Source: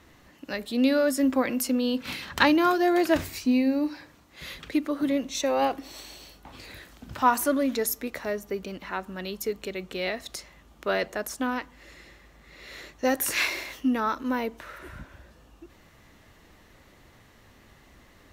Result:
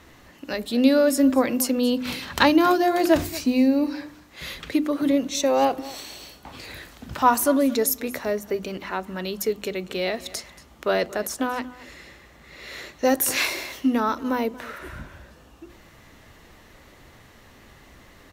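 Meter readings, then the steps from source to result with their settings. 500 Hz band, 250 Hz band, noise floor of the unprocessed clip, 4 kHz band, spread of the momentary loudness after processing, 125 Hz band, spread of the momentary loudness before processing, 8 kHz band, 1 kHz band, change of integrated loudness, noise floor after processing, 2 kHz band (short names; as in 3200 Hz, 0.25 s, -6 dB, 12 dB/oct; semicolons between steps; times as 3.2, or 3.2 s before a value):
+4.5 dB, +4.0 dB, -56 dBFS, +4.0 dB, 19 LU, +4.5 dB, 21 LU, +5.0 dB, +3.5 dB, +4.0 dB, -51 dBFS, +1.5 dB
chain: notches 50/100/150/200/250/300/350 Hz; dynamic EQ 1900 Hz, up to -5 dB, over -40 dBFS, Q 0.81; echo 0.231 s -19 dB; gain +5.5 dB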